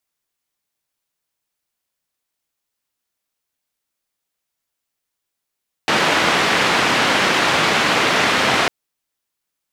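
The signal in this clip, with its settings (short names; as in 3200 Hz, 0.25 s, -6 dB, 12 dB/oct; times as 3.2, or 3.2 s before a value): noise band 150–2500 Hz, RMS -16.5 dBFS 2.80 s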